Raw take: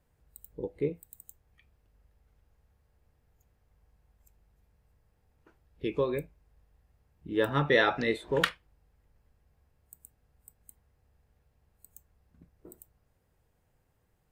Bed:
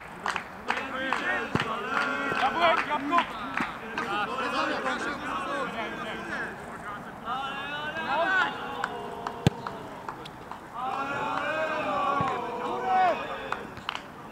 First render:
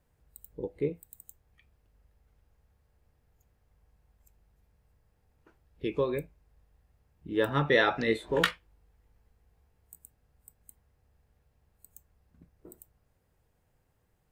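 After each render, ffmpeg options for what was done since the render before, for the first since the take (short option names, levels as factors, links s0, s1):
-filter_complex "[0:a]asettb=1/sr,asplit=3[s0][s1][s2];[s0]atrim=end=8.064[s3];[s1]atrim=start=8.06:end=9.99,asetpts=PTS-STARTPTS,afade=t=in:d=0.004:c=qsin,afade=t=out:st=1.926:d=0.004:c=qsin,asplit=2[s4][s5];[s5]adelay=18,volume=0.501[s6];[s4][s6]amix=inputs=2:normalize=0,atrim=end_sample=85113[s7];[s2]atrim=start=9.986[s8];[s3][s7]acrossfade=d=0.004:c1=hsin:c2=qsin[s9];[s9][s8]acrossfade=d=0.004:c1=qsin:c2=hsin"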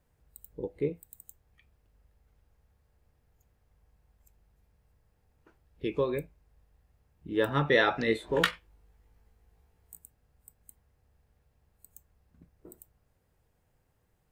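-filter_complex "[0:a]asettb=1/sr,asplit=3[s0][s1][s2];[s0]atrim=end=8.514[s3];[s1]atrim=start=8.51:end=10.02,asetpts=PTS-STARTPTS,afade=t=in:d=0.004:c=qsin,afade=t=out:st=1.506:d=0.004:c=qsin,asplit=2[s4][s5];[s5]adelay=18,volume=0.531[s6];[s4][s6]amix=inputs=2:normalize=0,atrim=end_sample=66591[s7];[s2]atrim=start=10.016[s8];[s3][s7]acrossfade=d=0.004:c1=hsin:c2=qsin[s9];[s9][s8]acrossfade=d=0.004:c1=qsin:c2=hsin"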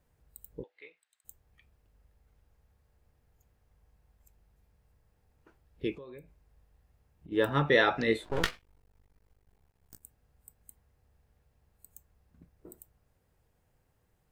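-filter_complex "[0:a]asplit=3[s0][s1][s2];[s0]afade=t=out:st=0.62:d=0.02[s3];[s1]asuperpass=centerf=2500:order=4:qfactor=0.8,afade=t=in:st=0.62:d=0.02,afade=t=out:st=1.24:d=0.02[s4];[s2]afade=t=in:st=1.24:d=0.02[s5];[s3][s4][s5]amix=inputs=3:normalize=0,asplit=3[s6][s7][s8];[s6]afade=t=out:st=5.94:d=0.02[s9];[s7]acompressor=threshold=0.00501:ratio=5:attack=3.2:release=140:knee=1:detection=peak,afade=t=in:st=5.94:d=0.02,afade=t=out:st=7.31:d=0.02[s10];[s8]afade=t=in:st=7.31:d=0.02[s11];[s9][s10][s11]amix=inputs=3:normalize=0,asettb=1/sr,asplit=3[s12][s13][s14];[s12]atrim=end=8.244[s15];[s13]atrim=start=8.24:end=10.03,asetpts=PTS-STARTPTS,afade=t=in:d=0.004:c=qsin,afade=t=out:st=1.786:d=0.004:c=qsin,aeval=exprs='max(val(0),0)':c=same[s16];[s14]atrim=start=10.026[s17];[s15][s16]acrossfade=d=0.004:c1=hsin:c2=qsin[s18];[s18][s17]acrossfade=d=0.004:c1=qsin:c2=hsin"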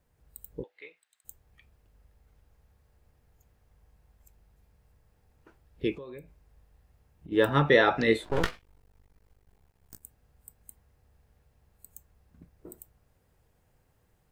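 -filter_complex "[0:a]acrossover=split=1400[s0][s1];[s1]alimiter=limit=0.0841:level=0:latency=1:release=205[s2];[s0][s2]amix=inputs=2:normalize=0,dynaudnorm=f=130:g=3:m=1.58"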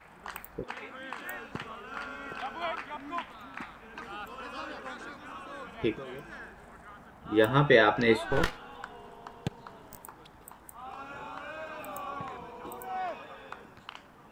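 -filter_complex "[1:a]volume=0.251[s0];[0:a][s0]amix=inputs=2:normalize=0"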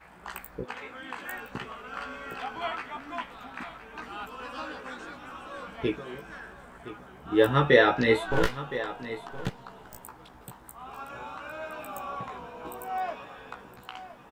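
-filter_complex "[0:a]asplit=2[s0][s1];[s1]adelay=16,volume=0.631[s2];[s0][s2]amix=inputs=2:normalize=0,aecho=1:1:1016:0.2"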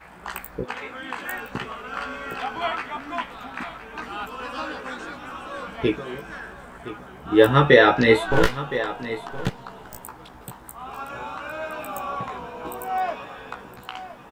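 -af "volume=2.11,alimiter=limit=0.891:level=0:latency=1"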